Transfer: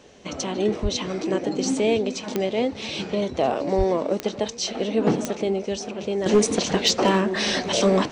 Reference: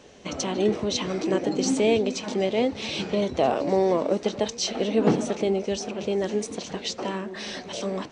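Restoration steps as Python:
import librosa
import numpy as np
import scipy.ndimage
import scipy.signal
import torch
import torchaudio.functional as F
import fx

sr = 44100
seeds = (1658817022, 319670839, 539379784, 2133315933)

y = fx.fix_declip(x, sr, threshold_db=-10.5)
y = fx.fix_declick_ar(y, sr, threshold=10.0)
y = fx.highpass(y, sr, hz=140.0, slope=24, at=(0.82, 0.94), fade=0.02)
y = fx.highpass(y, sr, hz=140.0, slope=24, at=(3.77, 3.89), fade=0.02)
y = fx.fix_level(y, sr, at_s=6.26, step_db=-11.0)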